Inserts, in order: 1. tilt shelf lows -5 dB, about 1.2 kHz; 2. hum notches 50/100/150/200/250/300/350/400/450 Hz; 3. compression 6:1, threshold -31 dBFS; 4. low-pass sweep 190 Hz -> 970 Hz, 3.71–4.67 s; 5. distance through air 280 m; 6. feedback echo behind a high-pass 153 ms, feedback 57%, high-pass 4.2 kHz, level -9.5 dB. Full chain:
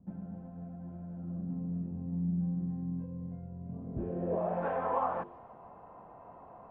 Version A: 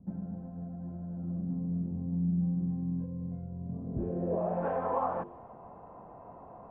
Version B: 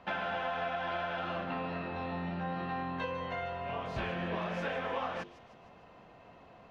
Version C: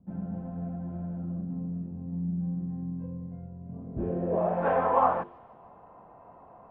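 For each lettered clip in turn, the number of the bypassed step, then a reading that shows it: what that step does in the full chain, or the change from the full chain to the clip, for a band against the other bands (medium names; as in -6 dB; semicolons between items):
1, crest factor change -1.5 dB; 4, 2 kHz band +16.5 dB; 3, mean gain reduction 3.5 dB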